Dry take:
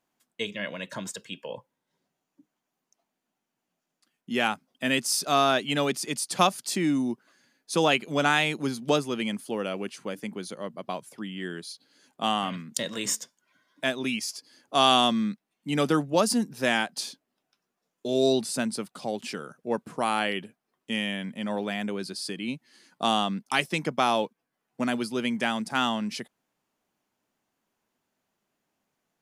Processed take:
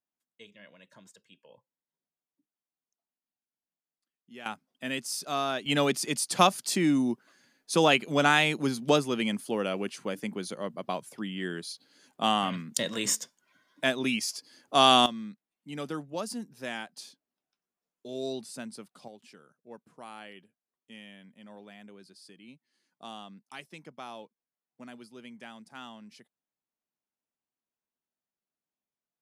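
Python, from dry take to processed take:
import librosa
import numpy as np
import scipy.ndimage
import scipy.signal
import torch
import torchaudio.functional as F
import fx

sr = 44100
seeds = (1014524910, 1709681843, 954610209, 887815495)

y = fx.gain(x, sr, db=fx.steps((0.0, -19.5), (4.46, -8.0), (5.66, 0.5), (15.06, -12.0), (19.08, -19.0)))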